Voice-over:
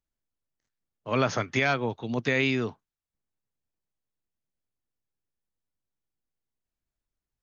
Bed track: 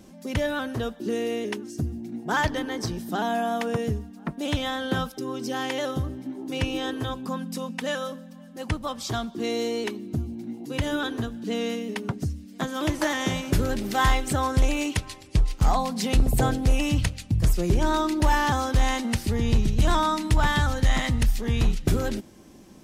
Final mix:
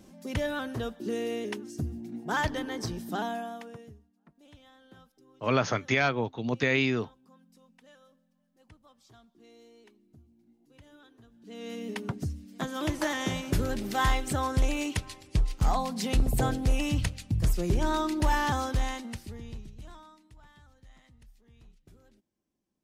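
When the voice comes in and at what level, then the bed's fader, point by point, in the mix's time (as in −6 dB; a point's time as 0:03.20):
4.35 s, −0.5 dB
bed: 0:03.19 −4.5 dB
0:04.12 −28.5 dB
0:11.20 −28.5 dB
0:11.86 −4.5 dB
0:18.64 −4.5 dB
0:20.35 −34.5 dB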